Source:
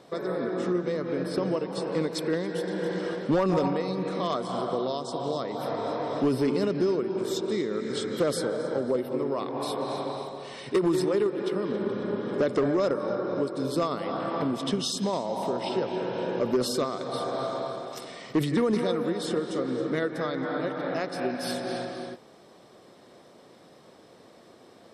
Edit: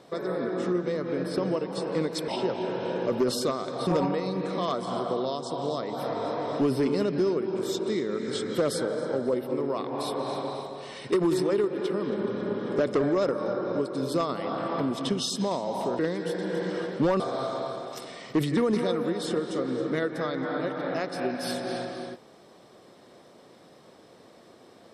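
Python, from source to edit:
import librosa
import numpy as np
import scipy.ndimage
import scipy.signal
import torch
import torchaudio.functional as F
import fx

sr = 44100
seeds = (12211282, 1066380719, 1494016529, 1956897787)

y = fx.edit(x, sr, fx.swap(start_s=2.28, length_s=1.21, other_s=15.61, other_length_s=1.59), tone=tone)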